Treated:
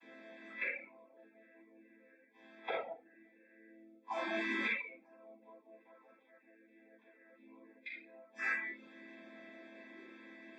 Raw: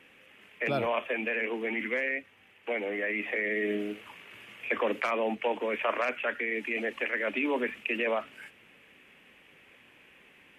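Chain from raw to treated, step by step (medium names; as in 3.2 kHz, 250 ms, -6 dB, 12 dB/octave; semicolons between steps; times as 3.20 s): vocoder on a held chord minor triad, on A3; inverted gate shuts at -35 dBFS, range -37 dB; 1.00–2.11 s: phase dispersion highs, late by 105 ms, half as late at 1.1 kHz; high-pass 310 Hz 12 dB/octave; simulated room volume 460 m³, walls mixed, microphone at 8.7 m; spectral noise reduction 12 dB; Butterworth band-stop 2.9 kHz, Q 3.8; reverb removal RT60 0.51 s; trim +5 dB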